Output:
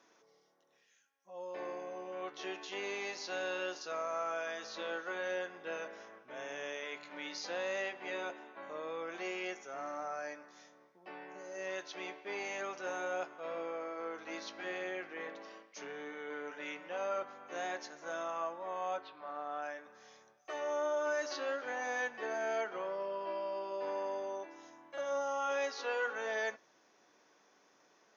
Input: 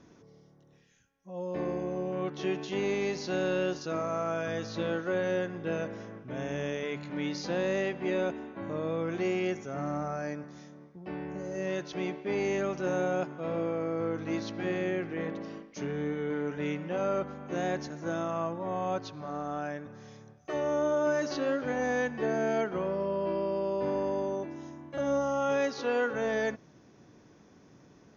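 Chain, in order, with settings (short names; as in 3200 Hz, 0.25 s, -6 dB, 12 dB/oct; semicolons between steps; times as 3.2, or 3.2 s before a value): 18.96–19.61 LPF 3000 Hz -> 4600 Hz 24 dB/oct; flange 0.64 Hz, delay 8.8 ms, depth 2 ms, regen -65%; HPF 680 Hz 12 dB/oct; gain +2 dB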